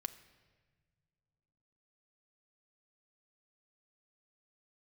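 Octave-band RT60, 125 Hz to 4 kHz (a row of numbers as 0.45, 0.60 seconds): 2.9, 2.7, 1.8, 1.3, 1.4, 1.1 seconds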